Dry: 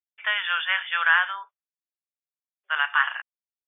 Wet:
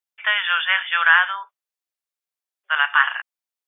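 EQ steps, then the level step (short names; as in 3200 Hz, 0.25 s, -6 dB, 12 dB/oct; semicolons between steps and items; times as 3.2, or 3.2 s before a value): HPF 370 Hz; +5.0 dB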